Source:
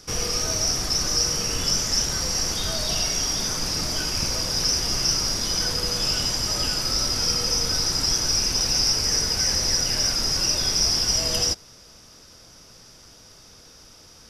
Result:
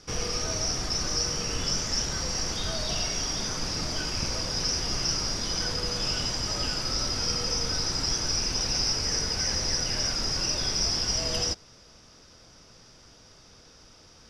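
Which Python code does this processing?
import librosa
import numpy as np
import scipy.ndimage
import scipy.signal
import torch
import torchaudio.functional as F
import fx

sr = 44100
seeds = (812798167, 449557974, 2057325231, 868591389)

y = fx.air_absorb(x, sr, metres=67.0)
y = y * librosa.db_to_amplitude(-2.5)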